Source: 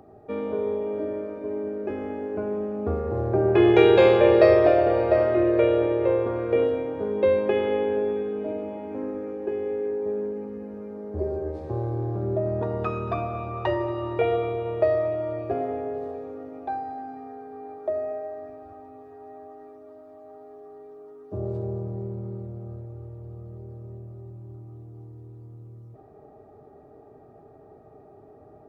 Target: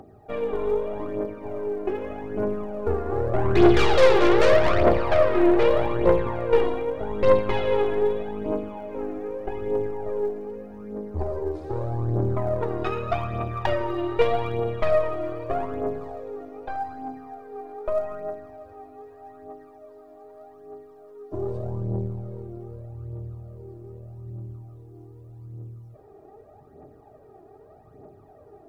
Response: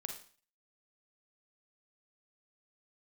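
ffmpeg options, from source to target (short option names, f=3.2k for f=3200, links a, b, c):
-af "aeval=exprs='(tanh(10*val(0)+0.75)-tanh(0.75))/10':c=same,aphaser=in_gain=1:out_gain=1:delay=3:decay=0.58:speed=0.82:type=triangular,highshelf=f=3.6k:g=6,volume=3dB"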